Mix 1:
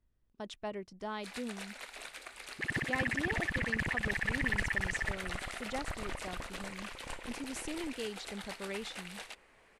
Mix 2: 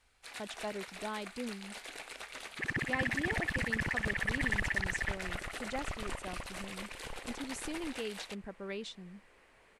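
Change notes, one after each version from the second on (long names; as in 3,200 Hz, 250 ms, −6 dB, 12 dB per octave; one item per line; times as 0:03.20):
first sound: entry −1.00 s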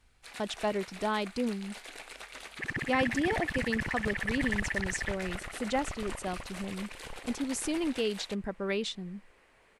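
speech +9.0 dB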